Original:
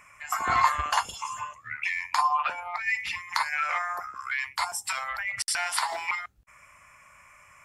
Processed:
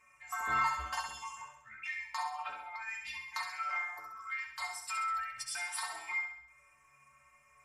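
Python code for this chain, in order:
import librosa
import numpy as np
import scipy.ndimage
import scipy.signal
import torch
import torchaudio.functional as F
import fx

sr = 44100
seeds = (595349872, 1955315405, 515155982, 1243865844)

y = fx.stiff_resonator(x, sr, f0_hz=66.0, decay_s=0.66, stiffness=0.03)
y = fx.room_flutter(y, sr, wall_m=11.3, rt60_s=0.67)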